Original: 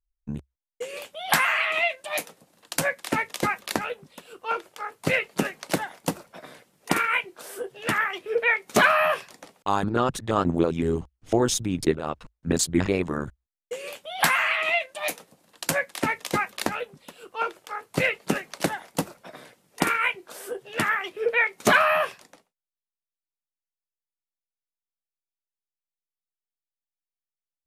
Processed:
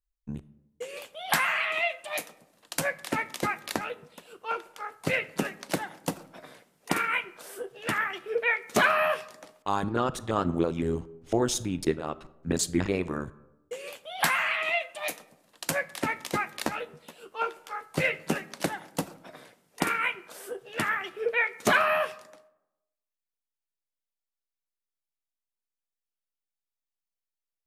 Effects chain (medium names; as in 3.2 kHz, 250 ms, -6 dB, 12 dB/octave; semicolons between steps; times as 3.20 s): 16.63–18.36 s: doubling 13 ms -7 dB; reverberation RT60 0.95 s, pre-delay 4 ms, DRR 16.5 dB; trim -4 dB